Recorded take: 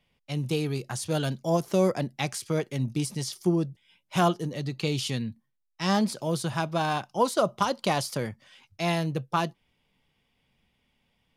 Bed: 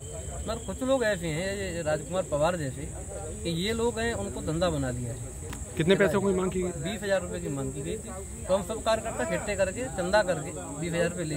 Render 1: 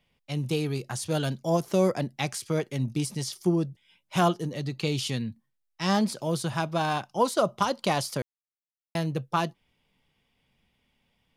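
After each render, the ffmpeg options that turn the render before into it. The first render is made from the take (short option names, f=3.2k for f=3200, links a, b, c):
-filter_complex "[0:a]asplit=3[a][b][c];[a]atrim=end=8.22,asetpts=PTS-STARTPTS,afade=t=out:st=8.216:d=0.004:c=hsin[d];[b]atrim=start=8.22:end=8.95,asetpts=PTS-STARTPTS,volume=0[e];[c]atrim=start=8.95,asetpts=PTS-STARTPTS,afade=t=in:d=0.004:c=hsin[f];[d][e][f]concat=n=3:v=0:a=1"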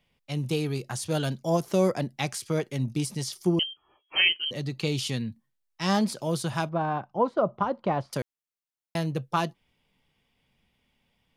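-filter_complex "[0:a]asettb=1/sr,asplit=3[a][b][c];[a]atrim=end=3.594[d];[b]atrim=start=3.59:end=4.51,asetpts=PTS-STARTPTS,afade=t=in:d=0.004:c=qsin,afade=t=out:st=0.916:d=0.004:c=qsin,lowpass=f=2.8k:t=q:w=0.5098,lowpass=f=2.8k:t=q:w=0.6013,lowpass=f=2.8k:t=q:w=0.9,lowpass=f=2.8k:t=q:w=2.563,afreqshift=-3300[e];[c]atrim=start=4.506[f];[d][e]acrossfade=d=0.004:c1=hsin:c2=qsin[g];[g][f]acrossfade=d=0.004:c1=qsin:c2=hsin,asettb=1/sr,asplit=3[h][i][j];[h]atrim=end=6.694[k];[i]atrim=start=6.69:end=8.13,asetpts=PTS-STARTPTS,afade=t=in:d=0.004:c=qsin,afade=t=out:st=1.436:d=0.004:c=qsin,lowpass=1.3k[l];[j]atrim=start=8.126[m];[k][l]acrossfade=d=0.004:c1=hsin:c2=qsin[n];[n][m]acrossfade=d=0.004:c1=qsin:c2=hsin"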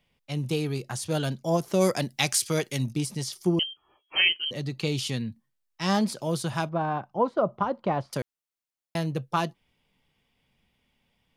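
-filter_complex "[0:a]asplit=3[a][b][c];[a]afade=t=out:st=1.8:d=0.02[d];[b]highshelf=f=2.2k:g=12,afade=t=in:st=1.8:d=0.02,afade=t=out:st=2.91:d=0.02[e];[c]afade=t=in:st=2.91:d=0.02[f];[d][e][f]amix=inputs=3:normalize=0"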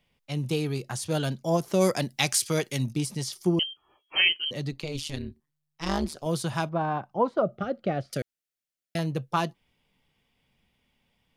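-filter_complex "[0:a]asettb=1/sr,asplit=3[a][b][c];[a]atrim=end=4.714[d];[b]atrim=start=4.71:end=6.26,asetpts=PTS-STARTPTS,afade=t=in:d=0.004:c=qsin,afade=t=out:st=1.546:d=0.004:c=qsin,tremolo=f=150:d=0.947[e];[c]atrim=start=6.256[f];[d][e]acrossfade=d=0.004:c1=hsin:c2=qsin[g];[g][f]acrossfade=d=0.004:c1=qsin:c2=hsin,asettb=1/sr,asplit=3[h][i][j];[h]atrim=end=7.424[k];[i]atrim=start=7.42:end=8.99,asetpts=PTS-STARTPTS,afade=t=in:d=0.004:c=qsin,afade=t=out:st=1.566:d=0.004:c=qsin,asuperstop=centerf=970:order=4:qfactor=1.8[l];[j]atrim=start=8.986[m];[k][l]acrossfade=d=0.004:c1=hsin:c2=qsin[n];[n][m]acrossfade=d=0.004:c1=qsin:c2=hsin"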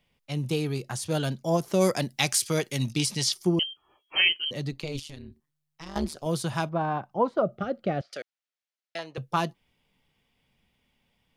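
-filter_complex "[0:a]asplit=3[a][b][c];[a]afade=t=out:st=2.8:d=0.02[d];[b]equalizer=f=3.7k:t=o:w=2.7:g=11,afade=t=in:st=2.8:d=0.02,afade=t=out:st=3.32:d=0.02[e];[c]afade=t=in:st=3.32:d=0.02[f];[d][e][f]amix=inputs=3:normalize=0,asettb=1/sr,asplit=3[g][h][i];[g]atrim=end=4.994[j];[h]atrim=start=4.99:end=5.96,asetpts=PTS-STARTPTS,afade=t=in:d=0.004:c=qsin,afade=t=out:st=0.966:d=0.004:c=qsin,acompressor=threshold=-39dB:ratio=4:attack=3.2:release=140:knee=1:detection=peak[k];[i]atrim=start=5.956[l];[j][k]acrossfade=d=0.004:c1=hsin:c2=qsin[m];[m][l]acrossfade=d=0.004:c1=qsin:c2=hsin,asettb=1/sr,asplit=3[n][o][p];[n]atrim=end=8.014[q];[o]atrim=start=8.01:end=9.18,asetpts=PTS-STARTPTS,afade=t=in:d=0.004:c=qsin,afade=t=out:st=1.166:d=0.004:c=qsin,highpass=600,lowpass=5k[r];[p]atrim=start=9.176[s];[q][r]acrossfade=d=0.004:c1=hsin:c2=qsin[t];[t][s]acrossfade=d=0.004:c1=qsin:c2=hsin"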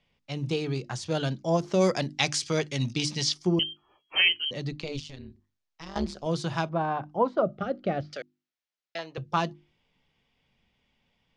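-af "lowpass=f=6.6k:w=0.5412,lowpass=f=6.6k:w=1.3066,bandreject=f=50:t=h:w=6,bandreject=f=100:t=h:w=6,bandreject=f=150:t=h:w=6,bandreject=f=200:t=h:w=6,bandreject=f=250:t=h:w=6,bandreject=f=300:t=h:w=6,bandreject=f=350:t=h:w=6"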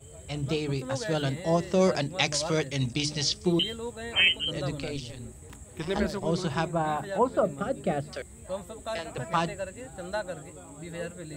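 -filter_complex "[1:a]volume=-9dB[a];[0:a][a]amix=inputs=2:normalize=0"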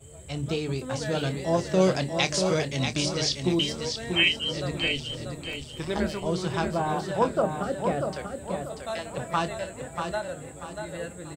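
-filter_complex "[0:a]asplit=2[a][b];[b]adelay=27,volume=-12dB[c];[a][c]amix=inputs=2:normalize=0,aecho=1:1:638|1276|1914|2552:0.501|0.17|0.0579|0.0197"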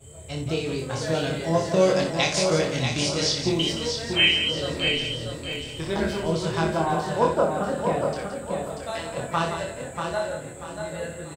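-filter_complex "[0:a]asplit=2[a][b];[b]adelay=25,volume=-3dB[c];[a][c]amix=inputs=2:normalize=0,aecho=1:1:61.22|172:0.398|0.355"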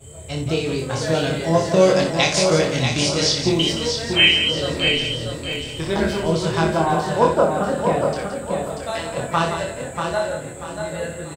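-af "volume=5dB"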